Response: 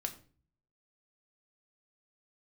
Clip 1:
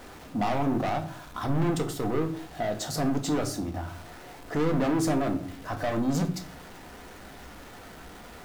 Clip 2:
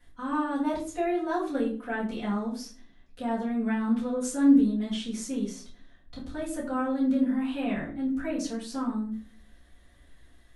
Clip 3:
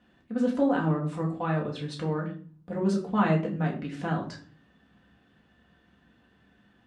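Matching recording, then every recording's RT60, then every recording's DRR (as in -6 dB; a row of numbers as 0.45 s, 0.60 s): 1; 0.40 s, 0.40 s, 0.40 s; 4.5 dB, -10.5 dB, -2.5 dB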